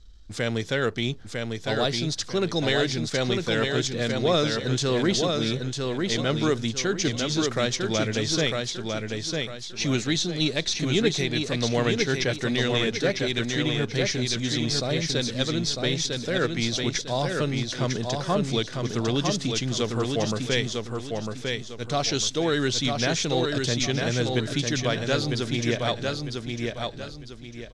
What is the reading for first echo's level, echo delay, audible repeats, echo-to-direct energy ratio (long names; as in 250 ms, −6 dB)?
−4.0 dB, 951 ms, 4, −3.5 dB